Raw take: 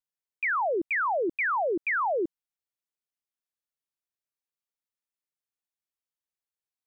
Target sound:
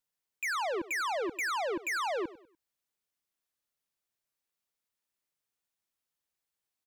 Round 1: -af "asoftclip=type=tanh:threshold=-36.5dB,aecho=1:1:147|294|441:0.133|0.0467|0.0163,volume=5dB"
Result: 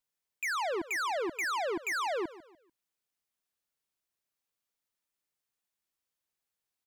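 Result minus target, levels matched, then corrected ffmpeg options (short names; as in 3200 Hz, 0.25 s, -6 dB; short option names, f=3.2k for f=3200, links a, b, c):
echo 49 ms late
-af "asoftclip=type=tanh:threshold=-36.5dB,aecho=1:1:98|196|294:0.133|0.0467|0.0163,volume=5dB"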